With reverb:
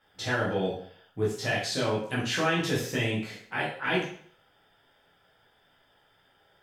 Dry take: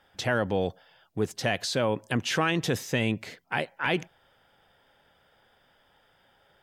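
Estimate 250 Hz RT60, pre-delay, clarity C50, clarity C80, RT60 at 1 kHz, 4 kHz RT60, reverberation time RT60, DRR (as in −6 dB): 0.60 s, 5 ms, 3.5 dB, 8.0 dB, 0.55 s, 0.50 s, 0.55 s, −7.0 dB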